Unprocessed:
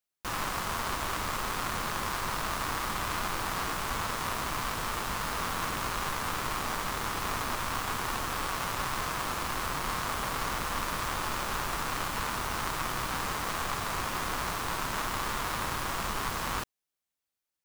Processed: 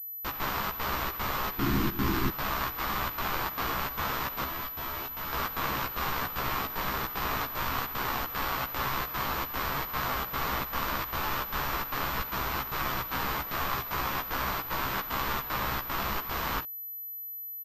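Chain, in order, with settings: 1.58–2.31 s: resonant low shelf 420 Hz +9 dB, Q 3; 4.44–5.33 s: feedback comb 84 Hz, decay 0.15 s, harmonics all, mix 90%; trance gate "xxx.xxx." 151 bpm -12 dB; doubling 15 ms -3 dB; class-D stage that switches slowly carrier 12 kHz

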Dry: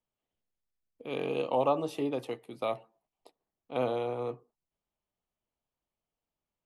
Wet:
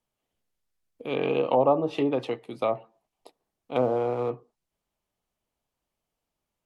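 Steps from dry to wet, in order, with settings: low-pass that closes with the level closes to 880 Hz, closed at -25.5 dBFS; 1.22–2.29 s: treble shelf 2.8 kHz +11.5 dB; 3.76–4.30 s: hysteresis with a dead band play -50.5 dBFS; trim +6.5 dB

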